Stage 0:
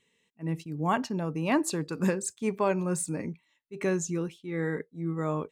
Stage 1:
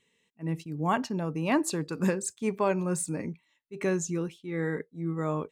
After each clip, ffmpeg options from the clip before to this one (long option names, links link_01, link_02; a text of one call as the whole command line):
ffmpeg -i in.wav -af anull out.wav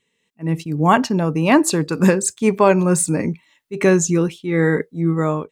ffmpeg -i in.wav -af "dynaudnorm=framelen=180:gausssize=5:maxgain=13dB,volume=1dB" out.wav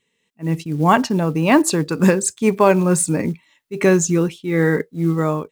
ffmpeg -i in.wav -af "acrusher=bits=8:mode=log:mix=0:aa=0.000001" out.wav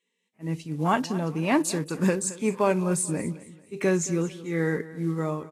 ffmpeg -i in.wav -af "aecho=1:1:221|442|663:0.141|0.048|0.0163,volume=-9dB" -ar 32000 -c:a libvorbis -b:a 32k out.ogg